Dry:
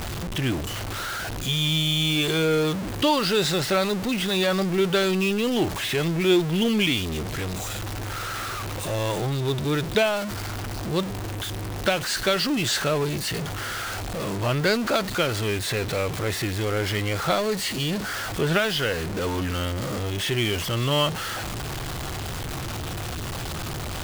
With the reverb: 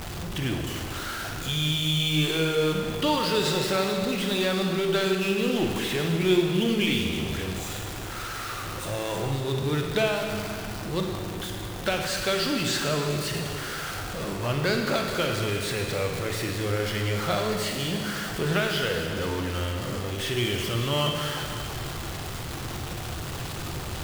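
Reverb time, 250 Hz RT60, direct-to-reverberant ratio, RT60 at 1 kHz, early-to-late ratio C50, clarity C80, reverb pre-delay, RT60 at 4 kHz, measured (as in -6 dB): 2.4 s, 2.4 s, 2.0 dB, 2.4 s, 2.5 dB, 4.0 dB, 39 ms, 2.4 s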